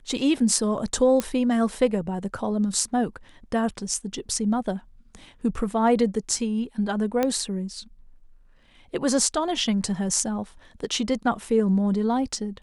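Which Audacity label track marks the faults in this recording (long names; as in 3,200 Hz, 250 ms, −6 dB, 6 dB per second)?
1.200000	1.200000	click −10 dBFS
7.230000	7.230000	click −10 dBFS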